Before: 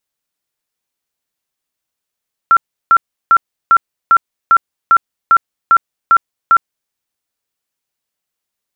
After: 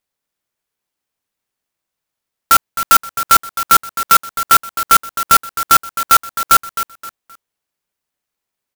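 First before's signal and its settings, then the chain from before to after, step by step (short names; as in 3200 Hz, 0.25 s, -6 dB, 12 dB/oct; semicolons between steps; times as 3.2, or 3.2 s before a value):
tone bursts 1360 Hz, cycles 79, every 0.40 s, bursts 11, -4 dBFS
on a send: feedback echo 0.262 s, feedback 29%, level -10.5 dB; on the sum: clock jitter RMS 0.064 ms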